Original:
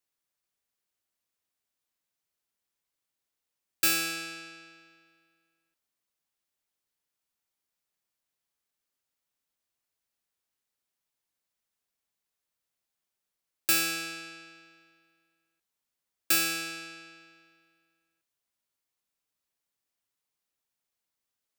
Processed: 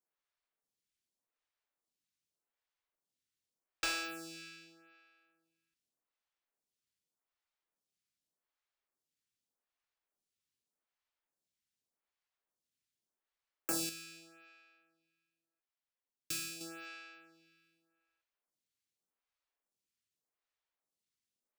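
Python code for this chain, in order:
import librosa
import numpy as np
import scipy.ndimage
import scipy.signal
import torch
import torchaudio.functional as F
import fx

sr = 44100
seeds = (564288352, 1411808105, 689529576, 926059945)

y = scipy.ndimage.median_filter(x, 3, mode='constant')
y = fx.dynamic_eq(y, sr, hz=2100.0, q=0.87, threshold_db=-42.0, ratio=4.0, max_db=-6)
y = fx.comb_fb(y, sr, f0_hz=130.0, decay_s=0.2, harmonics='all', damping=0.0, mix_pct=70, at=(13.89, 16.61))
y = fx.stagger_phaser(y, sr, hz=0.84)
y = F.gain(torch.from_numpy(y), -1.5).numpy()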